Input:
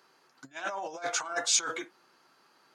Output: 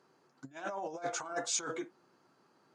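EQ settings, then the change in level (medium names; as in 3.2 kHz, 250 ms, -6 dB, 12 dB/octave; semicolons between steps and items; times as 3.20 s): tilt EQ -2.5 dB/octave; tilt shelf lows +3.5 dB; peaking EQ 7.6 kHz +8.5 dB 1.1 oct; -5.0 dB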